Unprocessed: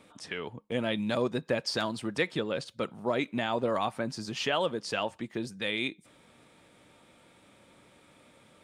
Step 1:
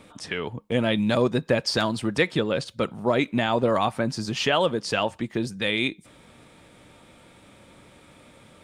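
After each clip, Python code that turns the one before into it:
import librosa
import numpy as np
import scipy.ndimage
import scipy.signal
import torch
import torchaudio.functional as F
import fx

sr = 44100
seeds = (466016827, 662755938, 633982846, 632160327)

y = fx.low_shelf(x, sr, hz=96.0, db=10.0)
y = y * librosa.db_to_amplitude(6.5)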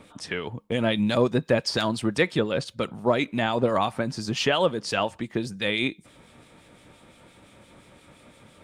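y = fx.harmonic_tremolo(x, sr, hz=5.8, depth_pct=50, crossover_hz=2100.0)
y = y * librosa.db_to_amplitude(1.5)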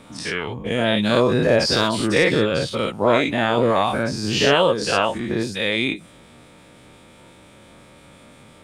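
y = fx.spec_dilate(x, sr, span_ms=120)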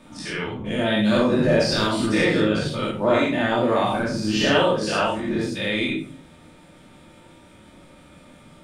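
y = fx.room_shoebox(x, sr, seeds[0], volume_m3=400.0, walls='furnished', distance_m=2.6)
y = y * librosa.db_to_amplitude(-7.0)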